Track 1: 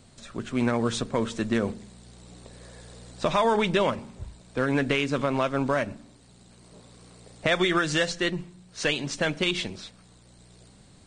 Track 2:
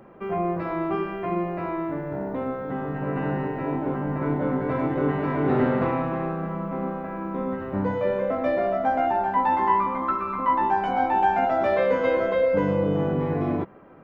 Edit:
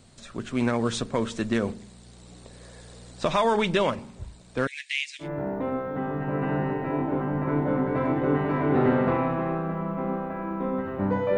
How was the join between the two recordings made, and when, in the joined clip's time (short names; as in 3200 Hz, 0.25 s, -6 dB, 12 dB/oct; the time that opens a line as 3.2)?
track 1
4.67–5.29 steep high-pass 1900 Hz 72 dB/oct
5.24 switch to track 2 from 1.98 s, crossfade 0.10 s